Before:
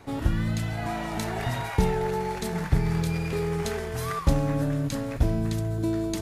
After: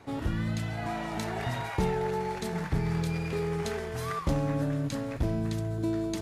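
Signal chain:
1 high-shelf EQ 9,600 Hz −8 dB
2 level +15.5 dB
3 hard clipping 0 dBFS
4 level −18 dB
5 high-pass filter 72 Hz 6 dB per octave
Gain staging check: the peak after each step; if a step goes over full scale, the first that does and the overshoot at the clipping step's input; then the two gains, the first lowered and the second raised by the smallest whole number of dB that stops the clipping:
−8.0, +7.5, 0.0, −18.0, −15.0 dBFS
step 2, 7.5 dB
step 2 +7.5 dB, step 4 −10 dB

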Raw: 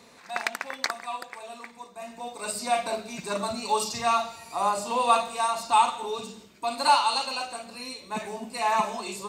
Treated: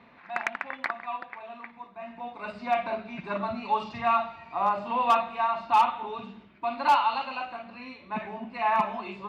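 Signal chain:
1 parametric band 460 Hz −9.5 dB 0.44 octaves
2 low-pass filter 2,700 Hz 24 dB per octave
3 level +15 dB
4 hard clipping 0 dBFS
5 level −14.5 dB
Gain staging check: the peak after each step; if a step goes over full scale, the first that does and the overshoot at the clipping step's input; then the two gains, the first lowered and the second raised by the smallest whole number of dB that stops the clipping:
−8.5, −10.0, +5.0, 0.0, −14.5 dBFS
step 3, 5.0 dB
step 3 +10 dB, step 5 −9.5 dB

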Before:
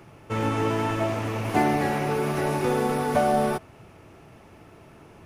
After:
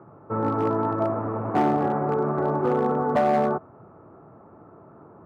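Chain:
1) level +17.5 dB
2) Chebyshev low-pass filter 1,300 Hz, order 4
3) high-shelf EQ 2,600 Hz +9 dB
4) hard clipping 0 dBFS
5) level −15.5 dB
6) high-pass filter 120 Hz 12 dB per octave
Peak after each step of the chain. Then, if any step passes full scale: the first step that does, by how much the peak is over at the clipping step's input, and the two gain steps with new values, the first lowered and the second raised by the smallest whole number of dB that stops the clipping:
+10.5, +8.5, +9.0, 0.0, −15.5, −10.5 dBFS
step 1, 9.0 dB
step 1 +8.5 dB, step 5 −6.5 dB

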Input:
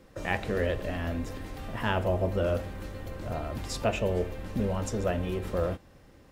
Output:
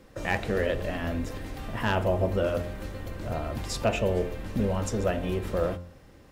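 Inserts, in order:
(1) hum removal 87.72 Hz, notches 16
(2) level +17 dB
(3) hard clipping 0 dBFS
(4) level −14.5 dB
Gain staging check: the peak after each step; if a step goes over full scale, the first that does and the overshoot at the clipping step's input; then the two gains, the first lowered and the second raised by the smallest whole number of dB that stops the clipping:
−12.5, +4.5, 0.0, −14.5 dBFS
step 2, 4.5 dB
step 2 +12 dB, step 4 −9.5 dB

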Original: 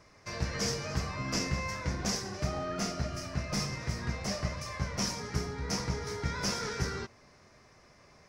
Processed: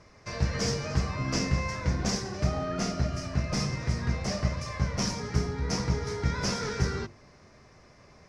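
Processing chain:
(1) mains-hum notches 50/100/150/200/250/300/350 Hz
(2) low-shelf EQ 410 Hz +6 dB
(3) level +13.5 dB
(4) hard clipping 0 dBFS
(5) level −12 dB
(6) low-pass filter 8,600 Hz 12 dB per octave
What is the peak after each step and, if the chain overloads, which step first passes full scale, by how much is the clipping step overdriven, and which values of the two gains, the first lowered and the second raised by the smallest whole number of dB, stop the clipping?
−19.0, −15.5, −2.0, −2.0, −14.0, −14.0 dBFS
no step passes full scale

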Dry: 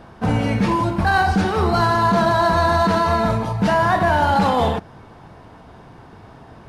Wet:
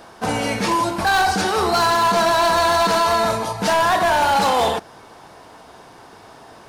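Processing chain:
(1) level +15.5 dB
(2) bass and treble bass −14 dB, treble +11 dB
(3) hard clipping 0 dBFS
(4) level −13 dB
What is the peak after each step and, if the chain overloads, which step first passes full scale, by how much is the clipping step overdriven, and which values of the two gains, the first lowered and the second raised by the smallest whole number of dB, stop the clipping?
+8.5, +9.0, 0.0, −13.0 dBFS
step 1, 9.0 dB
step 1 +6.5 dB, step 4 −4 dB

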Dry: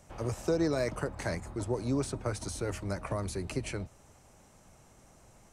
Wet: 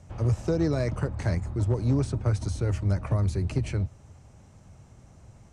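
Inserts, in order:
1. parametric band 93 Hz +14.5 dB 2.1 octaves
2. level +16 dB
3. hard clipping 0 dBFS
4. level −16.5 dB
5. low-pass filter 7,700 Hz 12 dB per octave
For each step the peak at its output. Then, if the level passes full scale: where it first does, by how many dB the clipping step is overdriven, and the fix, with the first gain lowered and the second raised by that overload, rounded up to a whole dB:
−11.5, +4.5, 0.0, −16.5, −16.5 dBFS
step 2, 4.5 dB
step 2 +11 dB, step 4 −11.5 dB

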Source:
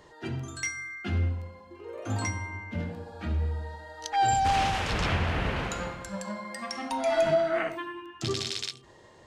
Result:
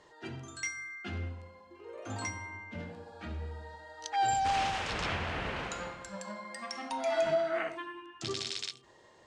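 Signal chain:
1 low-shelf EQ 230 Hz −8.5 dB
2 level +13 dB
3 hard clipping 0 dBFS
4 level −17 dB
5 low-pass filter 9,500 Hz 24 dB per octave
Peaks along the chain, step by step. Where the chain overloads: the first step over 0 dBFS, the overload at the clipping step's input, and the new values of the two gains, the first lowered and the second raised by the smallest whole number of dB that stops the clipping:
−15.5, −2.5, −2.5, −19.5, −19.5 dBFS
no step passes full scale

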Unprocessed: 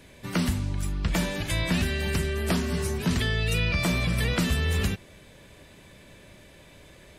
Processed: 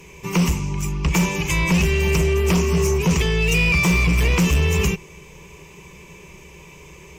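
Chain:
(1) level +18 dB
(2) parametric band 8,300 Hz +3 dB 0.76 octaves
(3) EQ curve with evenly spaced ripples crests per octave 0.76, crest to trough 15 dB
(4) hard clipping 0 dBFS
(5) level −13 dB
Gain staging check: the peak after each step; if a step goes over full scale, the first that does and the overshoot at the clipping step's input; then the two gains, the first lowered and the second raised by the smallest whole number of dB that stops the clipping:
+5.5, +5.5, +9.5, 0.0, −13.0 dBFS
step 1, 9.5 dB
step 1 +8 dB, step 5 −3 dB

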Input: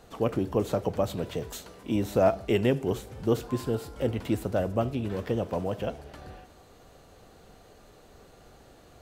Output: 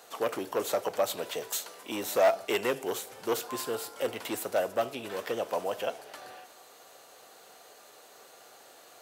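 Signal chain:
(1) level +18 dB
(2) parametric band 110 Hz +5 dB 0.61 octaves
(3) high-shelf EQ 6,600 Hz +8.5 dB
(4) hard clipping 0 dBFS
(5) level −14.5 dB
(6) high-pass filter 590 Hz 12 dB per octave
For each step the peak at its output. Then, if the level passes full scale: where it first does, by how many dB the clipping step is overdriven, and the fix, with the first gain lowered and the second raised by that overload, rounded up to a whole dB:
+8.5, +8.5, +9.0, 0.0, −14.5, −12.5 dBFS
step 1, 9.0 dB
step 1 +9 dB, step 5 −5.5 dB

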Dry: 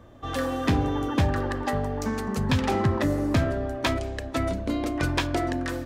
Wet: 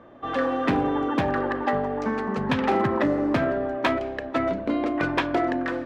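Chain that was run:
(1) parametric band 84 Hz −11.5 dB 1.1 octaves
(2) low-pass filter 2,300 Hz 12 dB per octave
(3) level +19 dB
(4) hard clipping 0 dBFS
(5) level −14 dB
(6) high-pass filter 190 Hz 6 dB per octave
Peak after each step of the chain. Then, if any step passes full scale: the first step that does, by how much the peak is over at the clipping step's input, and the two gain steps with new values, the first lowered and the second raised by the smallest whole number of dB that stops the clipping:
−13.0, −13.5, +5.5, 0.0, −14.0, −11.0 dBFS
step 3, 5.5 dB
step 3 +13 dB, step 5 −8 dB

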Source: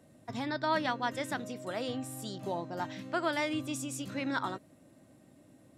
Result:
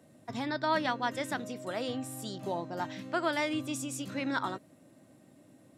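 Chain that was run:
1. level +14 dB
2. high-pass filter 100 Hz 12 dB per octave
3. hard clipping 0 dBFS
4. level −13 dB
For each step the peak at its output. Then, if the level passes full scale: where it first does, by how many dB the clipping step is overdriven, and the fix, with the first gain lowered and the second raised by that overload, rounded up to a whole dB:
−3.5, −3.0, −3.0, −16.0 dBFS
no step passes full scale

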